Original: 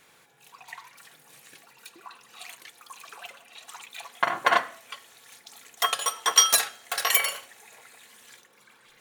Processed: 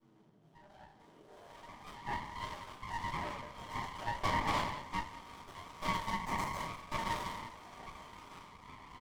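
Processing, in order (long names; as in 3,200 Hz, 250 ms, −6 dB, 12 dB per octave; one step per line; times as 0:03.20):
phase distortion by the signal itself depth 0.85 ms
high-pass filter 170 Hz 12 dB per octave
time-frequency box erased 0:06.19–0:06.55, 3,000–6,300 Hz
drawn EQ curve 850 Hz 0 dB, 1,200 Hz +10 dB, 2,500 Hz −23 dB, 3,600 Hz +11 dB
downward compressor 3 to 1, threshold −30 dBFS, peak gain reduction 19.5 dB
band-pass filter sweep 220 Hz → 1,300 Hz, 0:00.87–0:01.63
flanger 0.33 Hz, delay 7.2 ms, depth 9.6 ms, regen −1%
tape wow and flutter 27 cents
pitch shifter −3 semitones
single-tap delay 182 ms −13.5 dB
rectangular room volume 56 cubic metres, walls mixed, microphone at 2.4 metres
windowed peak hold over 17 samples
level +1 dB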